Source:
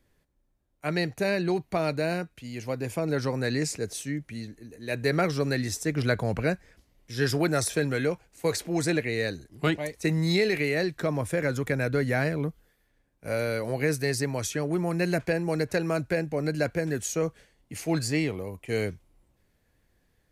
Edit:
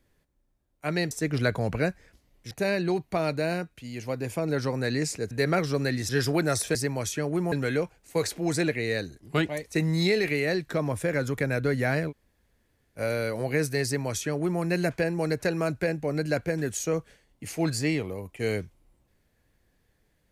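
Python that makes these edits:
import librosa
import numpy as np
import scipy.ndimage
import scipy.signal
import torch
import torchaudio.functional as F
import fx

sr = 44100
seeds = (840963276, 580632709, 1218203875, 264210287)

y = fx.edit(x, sr, fx.cut(start_s=3.91, length_s=1.06),
    fx.move(start_s=5.75, length_s=1.4, to_s=1.11),
    fx.room_tone_fill(start_s=12.39, length_s=0.88, crossfade_s=0.06),
    fx.duplicate(start_s=14.13, length_s=0.77, to_s=7.81), tone=tone)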